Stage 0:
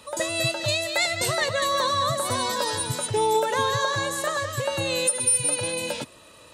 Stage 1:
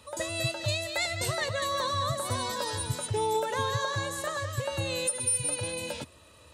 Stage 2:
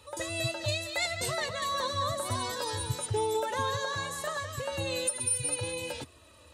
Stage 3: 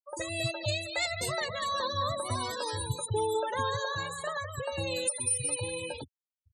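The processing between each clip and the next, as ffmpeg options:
ffmpeg -i in.wav -af "equalizer=frequency=75:width_type=o:width=0.9:gain=14.5,volume=-6.5dB" out.wav
ffmpeg -i in.wav -af "flanger=delay=2.3:depth=2.3:regen=-38:speed=0.35:shape=sinusoidal,volume=2.5dB" out.wav
ffmpeg -i in.wav -af "afftfilt=real='re*gte(hypot(re,im),0.0178)':imag='im*gte(hypot(re,im),0.0178)':win_size=1024:overlap=0.75" out.wav

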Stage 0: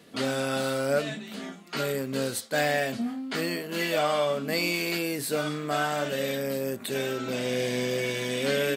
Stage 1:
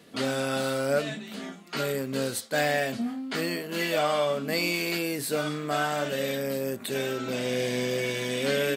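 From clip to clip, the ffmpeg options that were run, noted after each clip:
ffmpeg -i in.wav -af anull out.wav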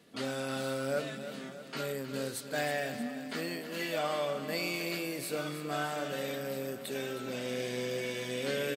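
ffmpeg -i in.wav -af "aecho=1:1:314|628|942|1256|1570|1884:0.282|0.161|0.0916|0.0522|0.0298|0.017,volume=-7.5dB" out.wav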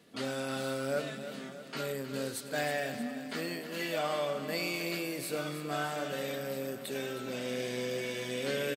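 ffmpeg -i in.wav -af "aecho=1:1:100:0.133" out.wav

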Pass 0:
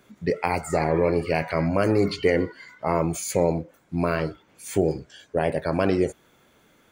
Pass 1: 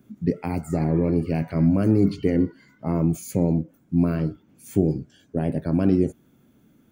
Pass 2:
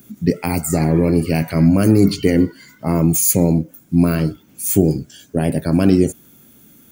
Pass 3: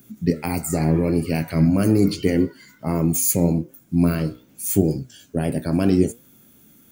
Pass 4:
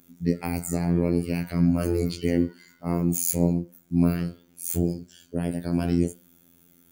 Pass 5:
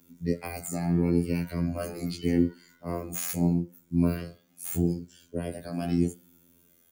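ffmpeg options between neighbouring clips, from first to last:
ffmpeg -i in.wav -af "equalizer=frequency=125:width_type=o:width=1:gain=5,equalizer=frequency=250:width_type=o:width=1:gain=9,equalizer=frequency=500:width_type=o:width=1:gain=-7,equalizer=frequency=1000:width_type=o:width=1:gain=-8,equalizer=frequency=2000:width_type=o:width=1:gain=-9,equalizer=frequency=4000:width_type=o:width=1:gain=-8,equalizer=frequency=8000:width_type=o:width=1:gain=-7" out.wav
ffmpeg -i in.wav -af "crystalizer=i=5:c=0,volume=6dB" out.wav
ffmpeg -i in.wav -af "flanger=delay=7:depth=9.5:regen=78:speed=0.8:shape=triangular" out.wav
ffmpeg -i in.wav -af "afftfilt=real='hypot(re,im)*cos(PI*b)':imag='0':win_size=2048:overlap=0.75,bandreject=frequency=182.5:width_type=h:width=4,bandreject=frequency=365:width_type=h:width=4,bandreject=frequency=547.5:width_type=h:width=4,bandreject=frequency=730:width_type=h:width=4,bandreject=frequency=912.5:width_type=h:width=4,bandreject=frequency=1095:width_type=h:width=4,bandreject=frequency=1277.5:width_type=h:width=4,bandreject=frequency=1460:width_type=h:width=4,bandreject=frequency=1642.5:width_type=h:width=4,bandreject=frequency=1825:width_type=h:width=4,bandreject=frequency=2007.5:width_type=h:width=4,bandreject=frequency=2190:width_type=h:width=4,bandreject=frequency=2372.5:width_type=h:width=4,bandreject=frequency=2555:width_type=h:width=4,bandreject=frequency=2737.5:width_type=h:width=4,bandreject=frequency=2920:width_type=h:width=4,bandreject=frequency=3102.5:width_type=h:width=4,bandreject=frequency=3285:width_type=h:width=4,bandreject=frequency=3467.5:width_type=h:width=4,bandreject=frequency=3650:width_type=h:width=4,bandreject=frequency=3832.5:width_type=h:width=4,bandreject=frequency=4015:width_type=h:width=4,bandreject=frequency=4197.5:width_type=h:width=4,bandreject=frequency=4380:width_type=h:width=4,bandreject=frequency=4562.5:width_type=h:width=4,bandreject=frequency=4745:width_type=h:width=4,bandreject=frequency=4927.5:width_type=h:width=4,volume=-2.5dB" out.wav
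ffmpeg -i in.wav -filter_complex "[0:a]acrossover=split=330|3600[link_01][link_02][link_03];[link_03]aeval=exprs='0.158*(abs(mod(val(0)/0.158+3,4)-2)-1)':channel_layout=same[link_04];[link_01][link_02][link_04]amix=inputs=3:normalize=0,asplit=2[link_05][link_06];[link_06]adelay=9,afreqshift=-0.79[link_07];[link_05][link_07]amix=inputs=2:normalize=1" out.wav

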